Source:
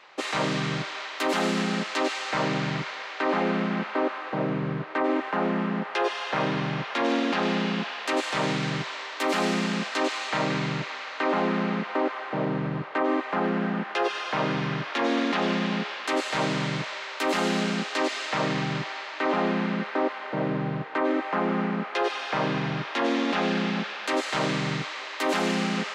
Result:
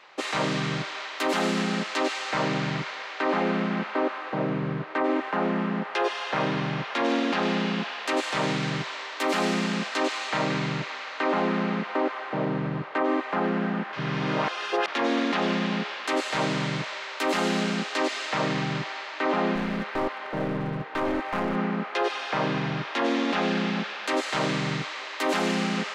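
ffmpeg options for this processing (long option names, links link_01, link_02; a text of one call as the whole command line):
ffmpeg -i in.wav -filter_complex "[0:a]asettb=1/sr,asplit=3[link_01][link_02][link_03];[link_01]atrim=end=19.554[link_04];[link_02]atrim=start=19.55:end=21.56,asetpts=PTS-STARTPTS,afade=type=in:duration=0.004:curve=qsin,afade=type=out:start_time=2.006:duration=0.004:curve=qsin,aeval=exprs='clip(val(0),-1,0.0398)':channel_layout=same[link_05];[link_03]atrim=start=21.556[link_06];[link_04][link_05]acrossfade=duration=0.004:curve1=hsin:curve2=qsin[link_07];[link_07][link_06]acrossfade=duration=0.004:curve1=qsin:curve2=hsin,asplit=3[link_08][link_09][link_10];[link_08]atrim=end=13.932[link_11];[link_09]atrim=start=13.928:end=14.882,asetpts=PTS-STARTPTS,areverse[link_12];[link_10]atrim=start=14.878[link_13];[link_11][link_12]acrossfade=duration=0.004:curve1=hsin:curve2=hsin[link_14];[link_14][link_13]acrossfade=duration=0.004:curve1=hsin:curve2=hsin" out.wav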